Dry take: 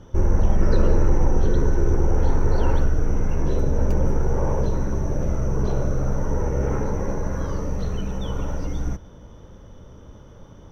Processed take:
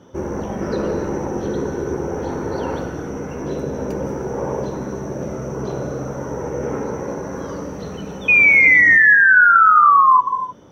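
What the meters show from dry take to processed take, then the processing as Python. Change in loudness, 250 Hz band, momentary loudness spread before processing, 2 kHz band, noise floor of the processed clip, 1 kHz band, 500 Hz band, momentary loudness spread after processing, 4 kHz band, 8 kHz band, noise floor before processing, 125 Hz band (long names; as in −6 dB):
+10.5 dB, +2.0 dB, 8 LU, +28.5 dB, −31 dBFS, +18.0 dB, +3.5 dB, 19 LU, +2.0 dB, can't be measured, −44 dBFS, −7.0 dB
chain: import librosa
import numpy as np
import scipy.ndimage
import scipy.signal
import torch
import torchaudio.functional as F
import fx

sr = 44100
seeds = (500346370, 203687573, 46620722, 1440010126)

y = fx.spec_paint(x, sr, seeds[0], shape='fall', start_s=8.28, length_s=1.93, low_hz=1000.0, high_hz=2500.0, level_db=-13.0)
y = scipy.signal.sosfilt(scipy.signal.butter(2, 200.0, 'highpass', fs=sr, output='sos'), y)
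y = fx.low_shelf(y, sr, hz=380.0, db=3.0)
y = fx.rev_gated(y, sr, seeds[1], gate_ms=330, shape='flat', drr_db=7.5)
y = y * librosa.db_to_amplitude(1.5)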